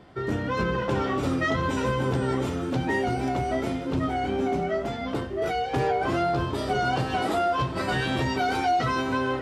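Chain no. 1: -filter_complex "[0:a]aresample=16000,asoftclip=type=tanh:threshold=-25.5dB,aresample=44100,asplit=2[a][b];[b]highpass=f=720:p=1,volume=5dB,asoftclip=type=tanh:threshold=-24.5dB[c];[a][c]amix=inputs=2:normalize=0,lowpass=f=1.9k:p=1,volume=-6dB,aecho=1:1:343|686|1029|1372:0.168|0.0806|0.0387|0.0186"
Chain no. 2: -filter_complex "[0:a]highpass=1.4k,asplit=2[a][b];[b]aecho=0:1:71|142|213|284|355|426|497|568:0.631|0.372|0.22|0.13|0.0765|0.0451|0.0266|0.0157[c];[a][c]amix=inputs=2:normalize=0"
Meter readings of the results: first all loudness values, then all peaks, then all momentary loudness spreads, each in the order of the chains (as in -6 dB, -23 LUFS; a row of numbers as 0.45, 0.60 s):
-32.5, -32.5 LUFS; -25.0, -18.0 dBFS; 3, 8 LU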